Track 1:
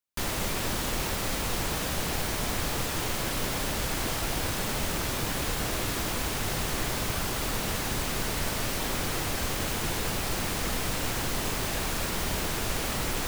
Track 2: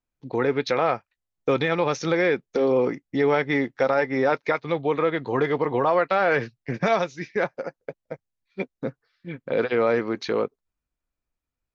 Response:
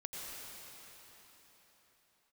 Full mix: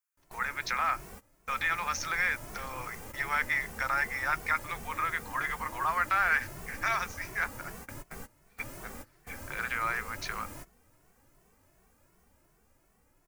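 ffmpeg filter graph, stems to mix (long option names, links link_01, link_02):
-filter_complex "[0:a]dynaudnorm=framelen=470:gausssize=7:maxgain=3.5dB,asplit=2[link_01][link_02];[link_02]adelay=2.2,afreqshift=2.7[link_03];[link_01][link_03]amix=inputs=2:normalize=1,volume=-13.5dB[link_04];[1:a]highpass=frequency=1200:width=0.5412,highpass=frequency=1200:width=1.3066,highshelf=frequency=4700:gain=6,volume=2dB,asplit=2[link_05][link_06];[link_06]apad=whole_len=585581[link_07];[link_04][link_07]sidechaingate=range=-21dB:threshold=-59dB:ratio=16:detection=peak[link_08];[link_08][link_05]amix=inputs=2:normalize=0,equalizer=frequency=3700:width_type=o:width=1.1:gain=-12.5"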